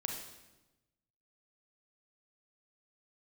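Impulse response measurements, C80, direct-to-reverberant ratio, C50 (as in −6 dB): 6.5 dB, 1.5 dB, 3.5 dB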